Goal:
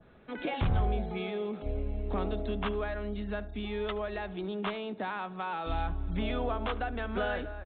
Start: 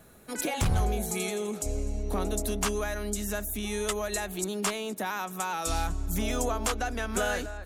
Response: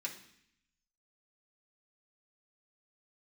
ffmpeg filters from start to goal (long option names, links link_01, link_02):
-filter_complex "[0:a]adynamicequalizer=threshold=0.00447:dfrequency=2500:dqfactor=0.86:tfrequency=2500:tqfactor=0.86:attack=5:release=100:ratio=0.375:range=2:mode=cutabove:tftype=bell,aresample=8000,aresample=44100,asplit=2[link_01][link_02];[link_02]adelay=74,lowpass=frequency=1600:poles=1,volume=-16dB,asplit=2[link_03][link_04];[link_04]adelay=74,lowpass=frequency=1600:poles=1,volume=0.34,asplit=2[link_05][link_06];[link_06]adelay=74,lowpass=frequency=1600:poles=1,volume=0.34[link_07];[link_01][link_03][link_05][link_07]amix=inputs=4:normalize=0,volume=-2dB"